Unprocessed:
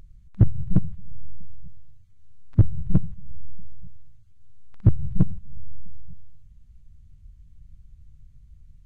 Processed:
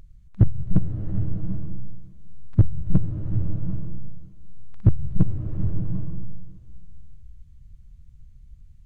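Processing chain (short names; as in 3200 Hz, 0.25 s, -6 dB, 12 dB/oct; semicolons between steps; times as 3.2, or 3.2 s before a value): bloom reverb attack 0.78 s, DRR 4.5 dB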